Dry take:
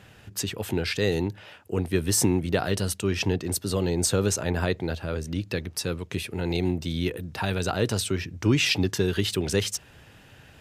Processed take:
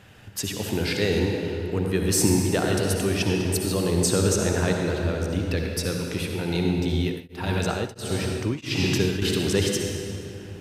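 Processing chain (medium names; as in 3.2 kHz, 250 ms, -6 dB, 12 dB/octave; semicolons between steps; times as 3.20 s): reverberation RT60 2.7 s, pre-delay 55 ms, DRR 1 dB; 6.95–9.22 s: tremolo of two beating tones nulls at 1.5 Hz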